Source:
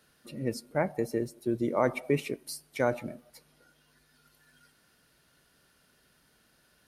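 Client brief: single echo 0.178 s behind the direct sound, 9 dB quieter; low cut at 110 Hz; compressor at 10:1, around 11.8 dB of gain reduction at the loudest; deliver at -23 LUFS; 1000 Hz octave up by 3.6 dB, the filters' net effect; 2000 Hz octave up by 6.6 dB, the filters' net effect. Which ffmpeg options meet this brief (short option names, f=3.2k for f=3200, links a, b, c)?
-af "highpass=110,equalizer=f=1k:t=o:g=3,equalizer=f=2k:t=o:g=7.5,acompressor=threshold=-31dB:ratio=10,aecho=1:1:178:0.355,volume=15dB"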